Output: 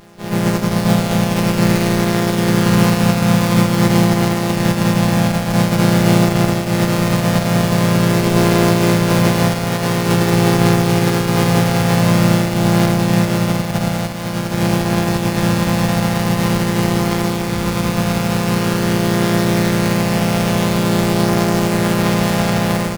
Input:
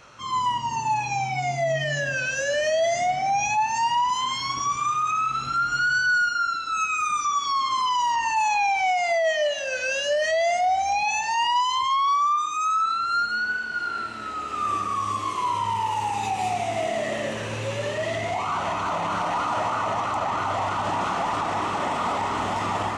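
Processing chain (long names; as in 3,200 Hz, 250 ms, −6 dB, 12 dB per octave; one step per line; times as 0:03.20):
samples sorted by size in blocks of 256 samples
automatic gain control gain up to 6 dB
in parallel at −6.5 dB: hard clipping −19 dBFS, distortion −10 dB
on the sum: pitch-shifted copies added −7 semitones −4 dB, +3 semitones −7 dB
slap from a distant wall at 17 metres, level −18 dB
pitch-shifted copies added +3 semitones −5 dB
on a send at −13 dB: convolution reverb RT60 0.85 s, pre-delay 6 ms
on the sum: level −2.5 dB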